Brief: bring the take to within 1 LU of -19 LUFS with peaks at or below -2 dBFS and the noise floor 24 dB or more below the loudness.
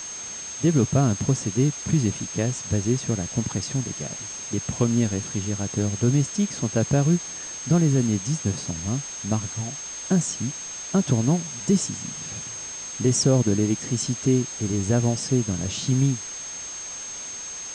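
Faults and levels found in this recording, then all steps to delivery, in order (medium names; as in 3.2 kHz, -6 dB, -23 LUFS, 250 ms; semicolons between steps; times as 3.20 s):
steady tone 6.4 kHz; tone level -33 dBFS; noise floor -35 dBFS; noise floor target -49 dBFS; loudness -24.5 LUFS; peak level -9.5 dBFS; loudness target -19.0 LUFS
-> band-stop 6.4 kHz, Q 30; noise reduction 14 dB, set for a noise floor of -35 dBFS; trim +5.5 dB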